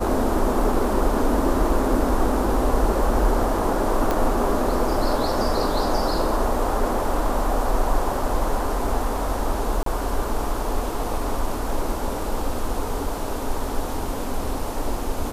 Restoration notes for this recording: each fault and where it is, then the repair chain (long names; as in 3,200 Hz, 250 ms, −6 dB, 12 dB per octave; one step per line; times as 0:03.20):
0:04.11: click
0:09.83–0:09.86: drop-out 33 ms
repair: click removal
repair the gap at 0:09.83, 33 ms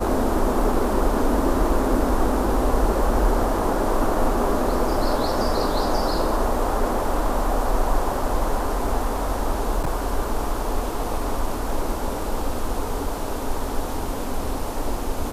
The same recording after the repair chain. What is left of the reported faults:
none of them is left